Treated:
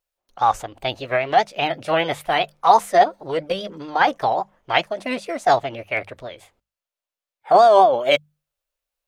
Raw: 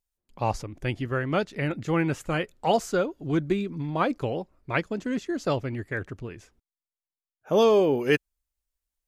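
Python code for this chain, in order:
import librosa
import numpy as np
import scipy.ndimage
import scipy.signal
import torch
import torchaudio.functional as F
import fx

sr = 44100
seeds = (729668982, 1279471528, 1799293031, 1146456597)

y = fx.peak_eq(x, sr, hz=560.0, db=12.5, octaves=0.58)
y = fx.vibrato(y, sr, rate_hz=5.0, depth_cents=66.0)
y = fx.curve_eq(y, sr, hz=(190.0, 740.0, 2200.0, 3800.0, 6900.0), db=(0, 9, 13, 10, 7))
y = fx.formant_shift(y, sr, semitones=5)
y = fx.hum_notches(y, sr, base_hz=50, count=4)
y = y * librosa.db_to_amplitude(-5.0)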